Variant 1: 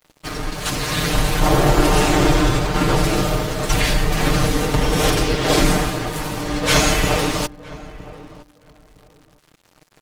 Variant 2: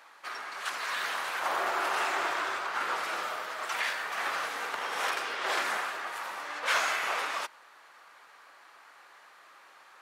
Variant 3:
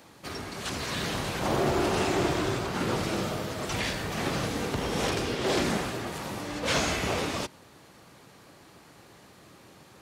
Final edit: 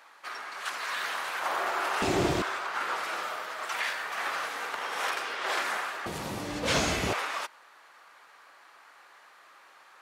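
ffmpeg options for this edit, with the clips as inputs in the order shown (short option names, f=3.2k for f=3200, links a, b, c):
-filter_complex "[2:a]asplit=2[a][b];[1:a]asplit=3[c][d][e];[c]atrim=end=2.022[f];[a]atrim=start=2.018:end=2.422[g];[d]atrim=start=2.418:end=6.062[h];[b]atrim=start=6.058:end=7.132[i];[e]atrim=start=7.128[j];[f][g]acrossfade=d=0.004:c1=hsin:c2=hsin[k];[k][h]acrossfade=d=0.004:c1=hsin:c2=hsin[l];[l][i]acrossfade=d=0.004:c1=hsin:c2=hsin[m];[m][j]acrossfade=d=0.004:c1=hsin:c2=hsin"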